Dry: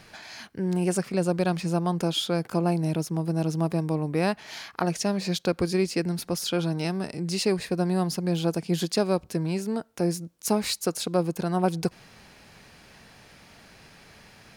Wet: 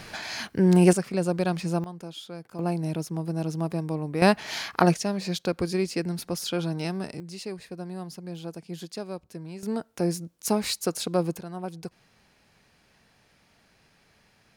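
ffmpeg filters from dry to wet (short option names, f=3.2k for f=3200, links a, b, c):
-af "asetnsamples=n=441:p=0,asendcmd='0.93 volume volume -1dB;1.84 volume volume -13.5dB;2.59 volume volume -3dB;4.22 volume volume 6.5dB;4.94 volume volume -2dB;7.2 volume volume -11.5dB;9.63 volume volume -0.5dB;11.39 volume volume -11dB',volume=8dB"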